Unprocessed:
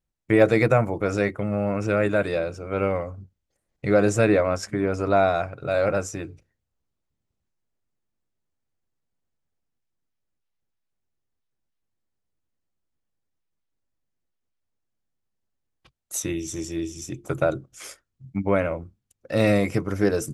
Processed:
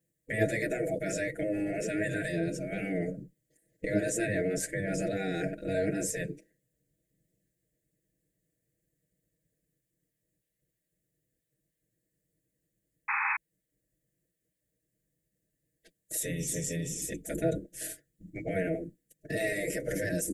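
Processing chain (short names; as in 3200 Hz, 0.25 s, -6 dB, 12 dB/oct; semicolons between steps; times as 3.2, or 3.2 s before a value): elliptic band-stop 600–1800 Hz, stop band 50 dB; spectral gate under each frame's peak -10 dB weak; in parallel at +2 dB: negative-ratio compressor -41 dBFS, ratio -1; on the sum: band shelf 3600 Hz -10.5 dB; comb 6.3 ms, depth 89%; painted sound noise, 13.08–13.37, 790–2600 Hz -27 dBFS; gain -2.5 dB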